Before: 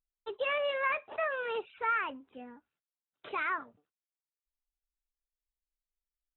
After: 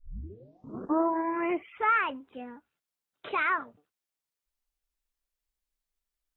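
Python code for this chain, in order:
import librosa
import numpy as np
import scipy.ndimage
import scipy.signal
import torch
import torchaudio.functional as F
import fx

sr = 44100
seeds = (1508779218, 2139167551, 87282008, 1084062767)

y = fx.tape_start_head(x, sr, length_s=1.95)
y = y * 10.0 ** (5.5 / 20.0)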